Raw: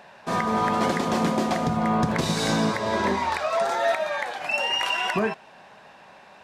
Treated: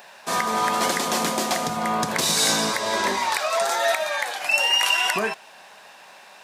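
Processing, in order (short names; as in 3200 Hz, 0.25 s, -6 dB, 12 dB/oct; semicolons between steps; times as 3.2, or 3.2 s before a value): RIAA curve recording; gain +1.5 dB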